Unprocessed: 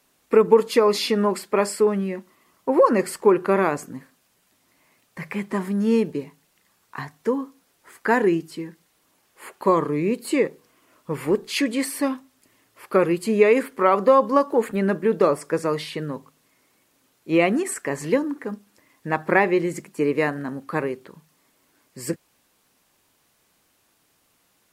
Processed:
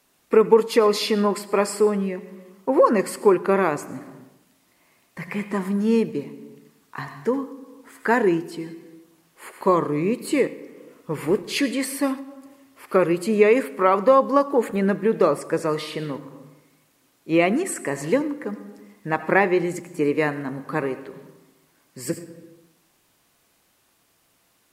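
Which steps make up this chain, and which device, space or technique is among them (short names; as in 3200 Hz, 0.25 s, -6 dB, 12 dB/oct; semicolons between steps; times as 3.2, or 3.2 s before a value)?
compressed reverb return (on a send at -5 dB: reverb RT60 0.85 s, pre-delay 77 ms + compressor 4:1, threshold -31 dBFS, peak gain reduction 17 dB)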